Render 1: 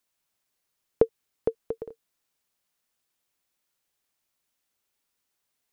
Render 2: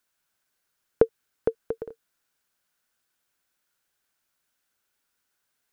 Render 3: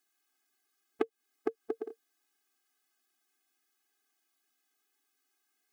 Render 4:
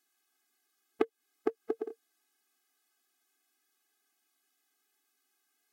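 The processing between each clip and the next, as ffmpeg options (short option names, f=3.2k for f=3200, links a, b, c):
-af "equalizer=f=1.5k:w=4.6:g=9.5,volume=1.5dB"
-af "acompressor=threshold=-26dB:ratio=6,afftfilt=real='re*eq(mod(floor(b*sr/1024/220),2),1)':imag='im*eq(mod(floor(b*sr/1024/220),2),1)':win_size=1024:overlap=0.75,volume=2dB"
-af "volume=2dB" -ar 44100 -c:a libvorbis -b:a 64k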